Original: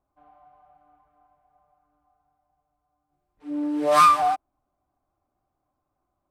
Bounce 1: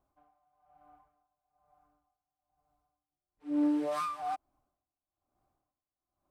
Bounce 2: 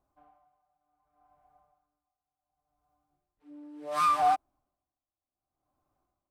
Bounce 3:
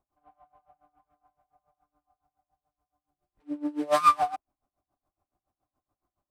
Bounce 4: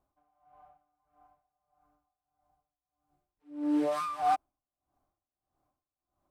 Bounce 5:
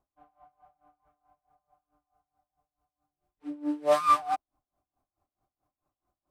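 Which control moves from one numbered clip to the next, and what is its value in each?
dB-linear tremolo, rate: 1.1, 0.68, 7.1, 1.6, 4.6 Hz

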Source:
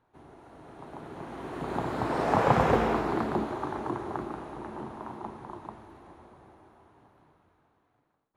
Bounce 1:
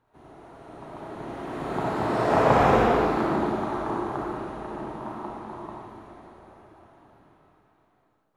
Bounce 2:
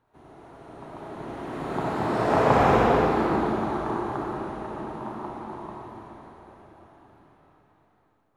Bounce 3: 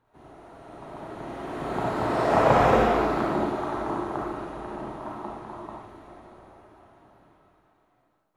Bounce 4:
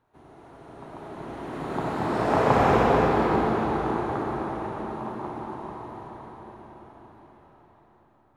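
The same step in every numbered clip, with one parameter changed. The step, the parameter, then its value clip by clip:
digital reverb, RT60: 0.98, 2.1, 0.4, 5 s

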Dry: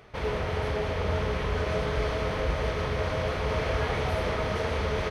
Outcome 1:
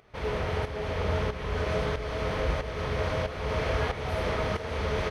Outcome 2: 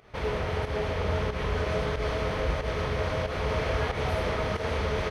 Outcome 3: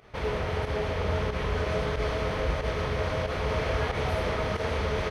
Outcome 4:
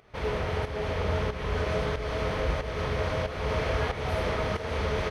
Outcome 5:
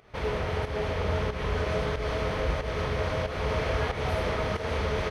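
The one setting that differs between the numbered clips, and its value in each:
pump, release: 525, 136, 83, 349, 209 ms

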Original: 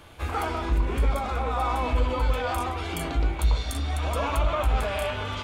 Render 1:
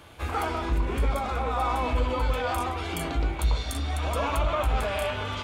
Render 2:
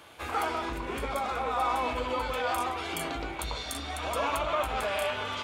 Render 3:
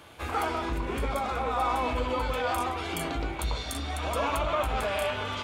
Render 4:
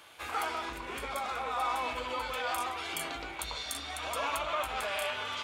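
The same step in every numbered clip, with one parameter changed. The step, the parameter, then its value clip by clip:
HPF, cutoff: 45, 400, 160, 1300 Hz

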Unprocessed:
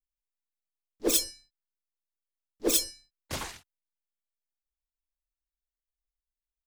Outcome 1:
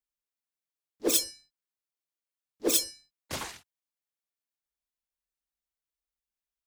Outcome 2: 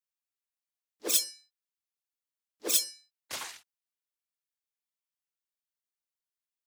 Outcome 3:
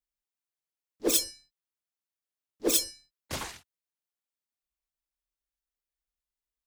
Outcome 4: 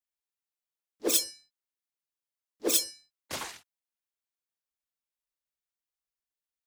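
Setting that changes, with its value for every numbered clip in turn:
HPF, cutoff: 110, 1200, 42, 320 Hz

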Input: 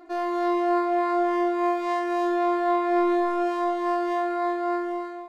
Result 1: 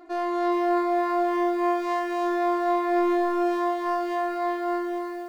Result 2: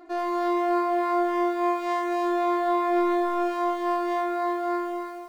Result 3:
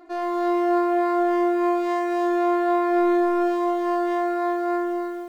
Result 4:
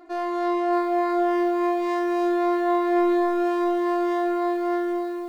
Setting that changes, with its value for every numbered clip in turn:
lo-fi delay, time: 423, 82, 123, 624 ms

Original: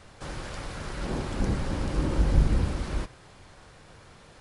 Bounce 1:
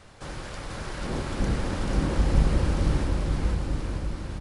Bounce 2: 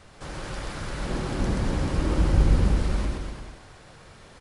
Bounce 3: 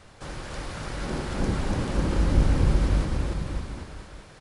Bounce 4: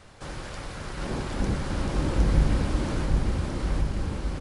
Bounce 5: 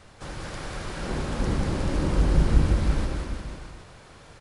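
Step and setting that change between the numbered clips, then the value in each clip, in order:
bouncing-ball echo, first gap: 0.49, 0.13, 0.29, 0.76, 0.19 s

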